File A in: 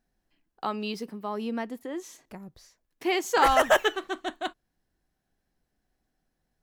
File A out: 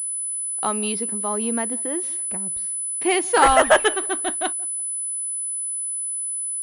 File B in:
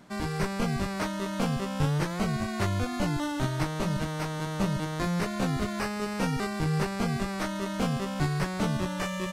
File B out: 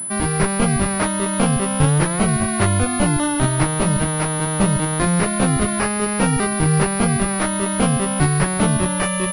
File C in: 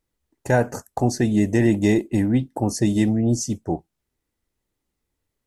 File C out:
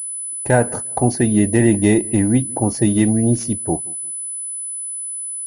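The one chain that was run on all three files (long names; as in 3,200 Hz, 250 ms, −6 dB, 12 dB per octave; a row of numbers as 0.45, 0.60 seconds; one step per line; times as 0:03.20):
feedback echo with a low-pass in the loop 176 ms, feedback 27%, low-pass 1,100 Hz, level −23 dB
switching amplifier with a slow clock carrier 10,000 Hz
normalise the peak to −3 dBFS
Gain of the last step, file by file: +5.5, +10.5, +3.5 decibels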